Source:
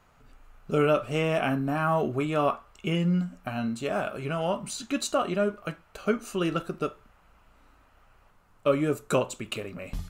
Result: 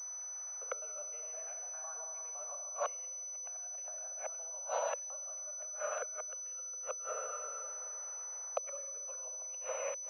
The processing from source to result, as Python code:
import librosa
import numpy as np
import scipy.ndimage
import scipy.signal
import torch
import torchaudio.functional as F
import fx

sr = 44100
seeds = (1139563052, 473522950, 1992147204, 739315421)

y = fx.local_reverse(x, sr, ms=102.0)
y = fx.air_absorb(y, sr, metres=290.0)
y = fx.rev_plate(y, sr, seeds[0], rt60_s=2.7, hf_ratio=0.75, predelay_ms=0, drr_db=1.0)
y = fx.gate_flip(y, sr, shuts_db=-21.0, range_db=-29)
y = fx.rider(y, sr, range_db=4, speed_s=2.0)
y = scipy.signal.sosfilt(scipy.signal.butter(16, 490.0, 'highpass', fs=sr, output='sos'), y)
y = fx.pwm(y, sr, carrier_hz=6000.0)
y = F.gain(torch.from_numpy(y), 1.0).numpy()